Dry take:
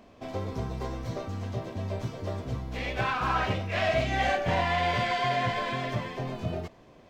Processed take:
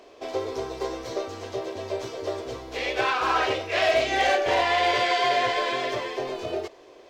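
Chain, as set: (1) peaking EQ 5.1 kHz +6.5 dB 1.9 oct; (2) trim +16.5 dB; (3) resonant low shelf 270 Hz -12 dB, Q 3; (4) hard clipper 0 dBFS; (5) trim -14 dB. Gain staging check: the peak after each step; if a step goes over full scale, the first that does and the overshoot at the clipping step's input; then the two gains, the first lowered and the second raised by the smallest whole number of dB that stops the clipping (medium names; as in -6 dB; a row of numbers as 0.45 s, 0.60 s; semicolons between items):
-12.0 dBFS, +4.5 dBFS, +4.5 dBFS, 0.0 dBFS, -14.0 dBFS; step 2, 4.5 dB; step 2 +11.5 dB, step 5 -9 dB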